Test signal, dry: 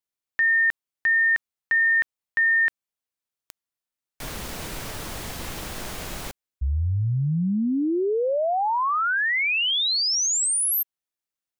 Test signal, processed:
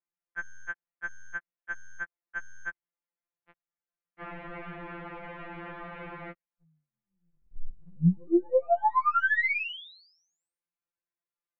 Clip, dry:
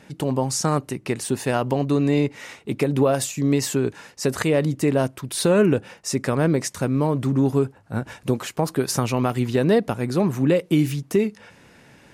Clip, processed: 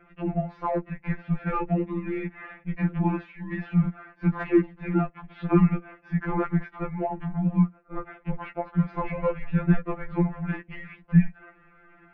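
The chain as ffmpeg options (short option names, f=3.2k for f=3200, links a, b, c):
-af "highpass=f=250:t=q:w=0.5412,highpass=f=250:t=q:w=1.307,lowpass=f=2.5k:t=q:w=0.5176,lowpass=f=2.5k:t=q:w=0.7071,lowpass=f=2.5k:t=q:w=1.932,afreqshift=-230,aeval=exprs='0.422*(cos(1*acos(clip(val(0)/0.422,-1,1)))-cos(1*PI/2))+0.00376*(cos(8*acos(clip(val(0)/0.422,-1,1)))-cos(8*PI/2))':c=same,afftfilt=real='re*2.83*eq(mod(b,8),0)':imag='im*2.83*eq(mod(b,8),0)':win_size=2048:overlap=0.75"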